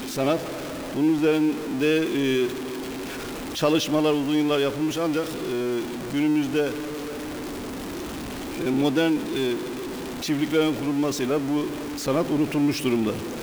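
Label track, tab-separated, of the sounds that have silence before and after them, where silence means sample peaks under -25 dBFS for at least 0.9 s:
3.570000	6.710000	sound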